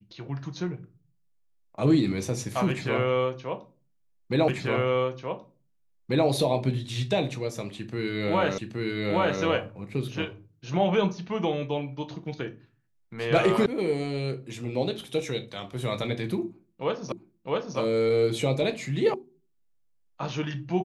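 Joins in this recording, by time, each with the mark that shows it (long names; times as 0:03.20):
0:04.48: the same again, the last 1.79 s
0:08.58: the same again, the last 0.82 s
0:13.66: cut off before it has died away
0:17.12: the same again, the last 0.66 s
0:19.14: cut off before it has died away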